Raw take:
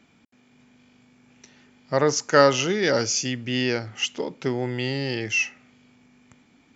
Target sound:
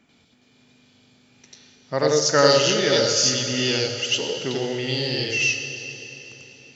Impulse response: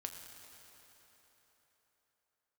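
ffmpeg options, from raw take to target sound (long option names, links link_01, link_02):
-filter_complex "[0:a]asplit=2[link_01][link_02];[link_02]equalizer=frequency=250:width_type=o:width=1:gain=-7,equalizer=frequency=500:width_type=o:width=1:gain=4,equalizer=frequency=1000:width_type=o:width=1:gain=-7,equalizer=frequency=2000:width_type=o:width=1:gain=-5,equalizer=frequency=4000:width_type=o:width=1:gain=12[link_03];[1:a]atrim=start_sample=2205,adelay=92[link_04];[link_03][link_04]afir=irnorm=-1:irlink=0,volume=5dB[link_05];[link_01][link_05]amix=inputs=2:normalize=0,volume=-2.5dB"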